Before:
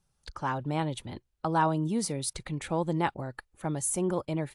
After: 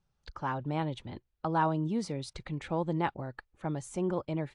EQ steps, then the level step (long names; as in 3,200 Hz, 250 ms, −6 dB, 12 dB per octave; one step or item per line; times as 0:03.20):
high-frequency loss of the air 120 metres
−2.0 dB